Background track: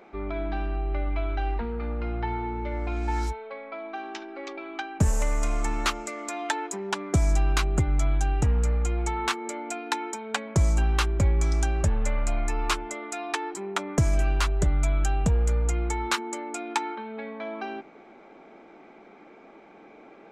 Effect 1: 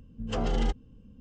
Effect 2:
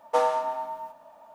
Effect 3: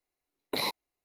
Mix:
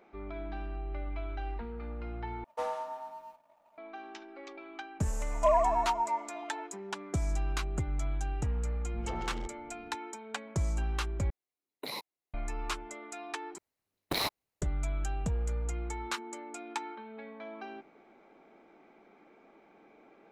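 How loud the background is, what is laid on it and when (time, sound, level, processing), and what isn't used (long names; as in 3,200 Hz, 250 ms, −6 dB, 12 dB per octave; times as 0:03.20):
background track −9.5 dB
0:02.44: overwrite with 2 −14.5 dB + leveller curve on the samples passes 1
0:05.30: mix in 2 −0.5 dB + three sine waves on the formant tracks
0:08.75: mix in 1 −6.5 dB + soft clipping −27.5 dBFS
0:11.30: overwrite with 3 −8.5 dB + high-pass filter 110 Hz
0:13.58: overwrite with 3 −0.5 dB + ring modulator with a square carrier 100 Hz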